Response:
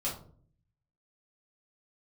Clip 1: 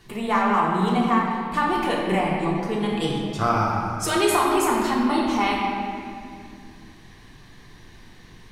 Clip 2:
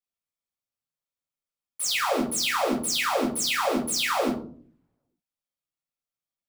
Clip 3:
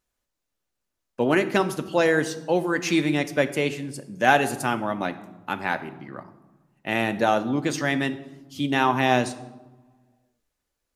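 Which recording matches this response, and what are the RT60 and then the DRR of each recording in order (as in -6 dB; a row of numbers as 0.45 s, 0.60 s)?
2; 2.2 s, 0.50 s, 1.2 s; -4.5 dB, -6.0 dB, 9.0 dB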